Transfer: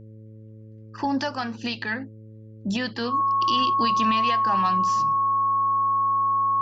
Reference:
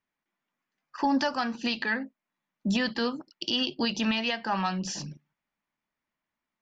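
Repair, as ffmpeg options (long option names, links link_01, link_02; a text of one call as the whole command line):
ffmpeg -i in.wav -af "bandreject=frequency=109:width_type=h:width=4,bandreject=frequency=218:width_type=h:width=4,bandreject=frequency=327:width_type=h:width=4,bandreject=frequency=436:width_type=h:width=4,bandreject=frequency=545:width_type=h:width=4,bandreject=frequency=1100:width=30,asetnsamples=nb_out_samples=441:pad=0,asendcmd='4.84 volume volume 3.5dB',volume=0dB" out.wav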